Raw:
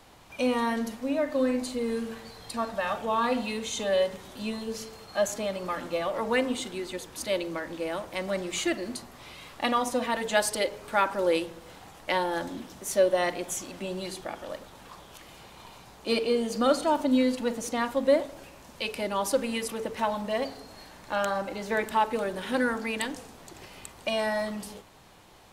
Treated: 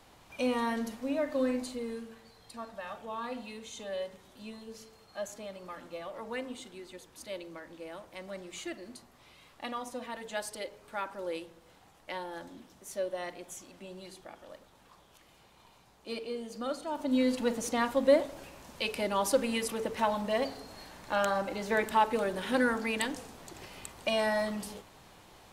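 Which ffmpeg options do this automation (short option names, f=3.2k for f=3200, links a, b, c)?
-af "volume=7dB,afade=t=out:st=1.5:d=0.59:silence=0.398107,afade=t=in:st=16.9:d=0.49:silence=0.281838"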